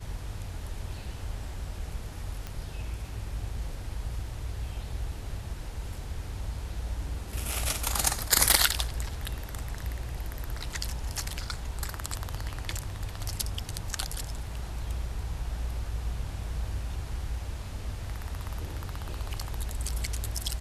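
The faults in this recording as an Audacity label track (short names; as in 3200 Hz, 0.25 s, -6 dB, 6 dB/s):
2.470000	2.470000	pop -22 dBFS
8.510000	8.510000	pop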